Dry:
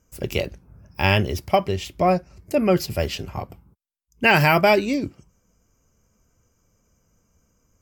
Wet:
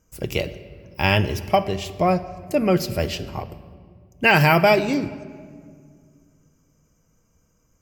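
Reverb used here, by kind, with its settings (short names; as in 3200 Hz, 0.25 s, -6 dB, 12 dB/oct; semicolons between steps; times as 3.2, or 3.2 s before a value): shoebox room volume 3300 m³, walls mixed, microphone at 0.59 m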